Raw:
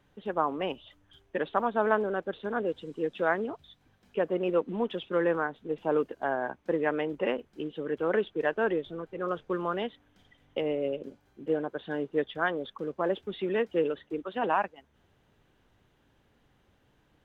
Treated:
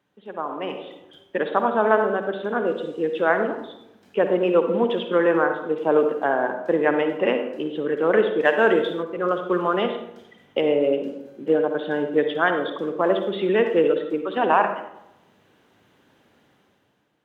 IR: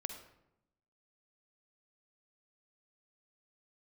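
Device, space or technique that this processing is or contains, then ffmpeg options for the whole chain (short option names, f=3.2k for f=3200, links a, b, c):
far laptop microphone: -filter_complex "[1:a]atrim=start_sample=2205[a];[0:a][a]afir=irnorm=-1:irlink=0,highpass=170,dynaudnorm=f=140:g=11:m=13dB,asettb=1/sr,asplit=3[b][c][d];[b]atrim=end=8.454[e];[c]atrim=start=8.45:end=9.03,asetpts=PTS-STARTPTS,afade=t=in:d=0.004:c=qsin,afade=t=out:st=0.576:d=0.004:c=qsin,highshelf=f=2.7k:g=10[f];[d]atrim=start=9.026[g];[e][f]acrossfade=d=0.004:c1=hsin:c2=qsin[h];[h][g]acrossfade=d=0.004:c1=qsin:c2=hsin,volume=-2dB"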